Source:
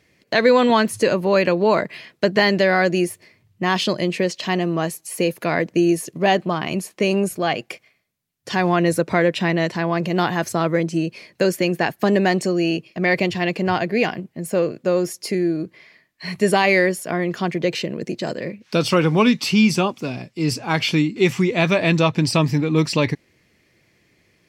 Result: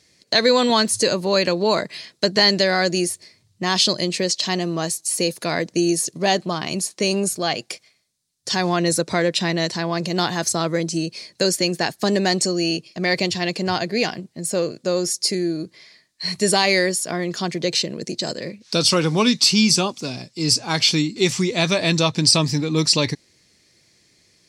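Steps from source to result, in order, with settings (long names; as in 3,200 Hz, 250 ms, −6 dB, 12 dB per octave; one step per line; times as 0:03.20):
flat-topped bell 6,100 Hz +13.5 dB
level −2.5 dB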